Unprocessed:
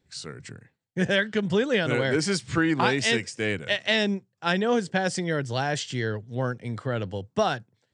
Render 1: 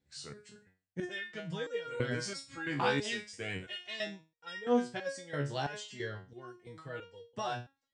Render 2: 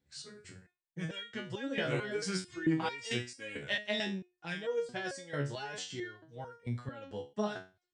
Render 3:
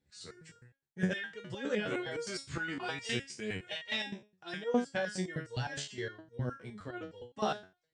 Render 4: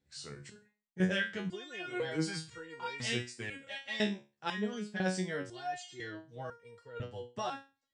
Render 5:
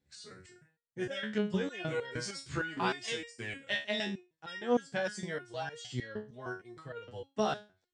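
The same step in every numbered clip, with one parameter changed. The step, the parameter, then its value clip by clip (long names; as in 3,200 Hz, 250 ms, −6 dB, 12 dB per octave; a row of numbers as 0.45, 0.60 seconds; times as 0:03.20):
step-sequenced resonator, speed: 3, 4.5, 9.7, 2, 6.5 Hertz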